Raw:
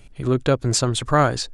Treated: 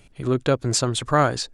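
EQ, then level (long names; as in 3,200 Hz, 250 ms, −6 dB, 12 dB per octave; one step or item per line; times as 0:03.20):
low-shelf EQ 64 Hz −9.5 dB
−1.0 dB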